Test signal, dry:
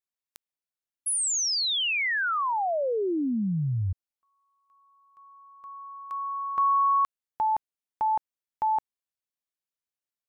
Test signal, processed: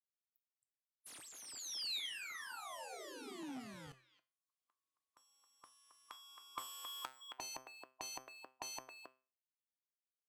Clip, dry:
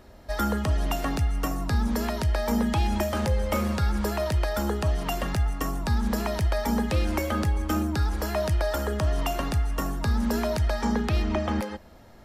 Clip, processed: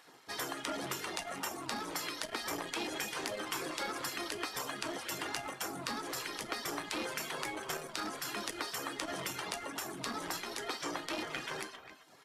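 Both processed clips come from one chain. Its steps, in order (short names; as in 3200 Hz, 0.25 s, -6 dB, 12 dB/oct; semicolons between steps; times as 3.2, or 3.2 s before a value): in parallel at -8 dB: companded quantiser 4-bit; on the sum: LPF 12000 Hz 24 dB/oct; speakerphone echo 0.27 s, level -9 dB; reverb removal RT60 0.54 s; spectral gate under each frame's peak -15 dB weak; low shelf 94 Hz -12 dB; resonator 130 Hz, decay 0.36 s, harmonics all, mix 60%; small resonant body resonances 310/3300 Hz, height 6 dB; core saturation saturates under 2600 Hz; gain +3.5 dB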